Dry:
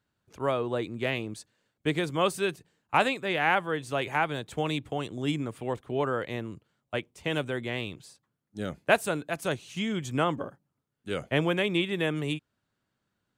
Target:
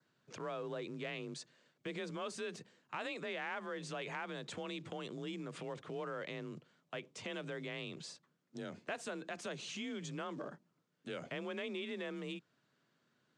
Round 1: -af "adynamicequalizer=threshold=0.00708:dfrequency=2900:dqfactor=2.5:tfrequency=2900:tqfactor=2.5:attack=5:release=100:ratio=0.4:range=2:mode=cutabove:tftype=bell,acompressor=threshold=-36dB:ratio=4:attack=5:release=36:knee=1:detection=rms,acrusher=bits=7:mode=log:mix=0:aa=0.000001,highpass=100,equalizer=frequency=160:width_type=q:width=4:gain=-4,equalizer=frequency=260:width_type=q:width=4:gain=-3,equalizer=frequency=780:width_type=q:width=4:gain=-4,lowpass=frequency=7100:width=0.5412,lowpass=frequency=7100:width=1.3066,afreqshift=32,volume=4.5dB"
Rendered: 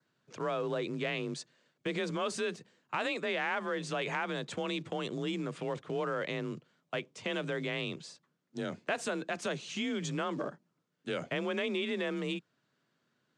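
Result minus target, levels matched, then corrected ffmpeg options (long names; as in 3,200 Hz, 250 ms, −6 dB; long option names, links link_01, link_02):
downward compressor: peak gain reduction −8 dB
-af "adynamicequalizer=threshold=0.00708:dfrequency=2900:dqfactor=2.5:tfrequency=2900:tqfactor=2.5:attack=5:release=100:ratio=0.4:range=2:mode=cutabove:tftype=bell,acompressor=threshold=-47dB:ratio=4:attack=5:release=36:knee=1:detection=rms,acrusher=bits=7:mode=log:mix=0:aa=0.000001,highpass=100,equalizer=frequency=160:width_type=q:width=4:gain=-4,equalizer=frequency=260:width_type=q:width=4:gain=-3,equalizer=frequency=780:width_type=q:width=4:gain=-4,lowpass=frequency=7100:width=0.5412,lowpass=frequency=7100:width=1.3066,afreqshift=32,volume=4.5dB"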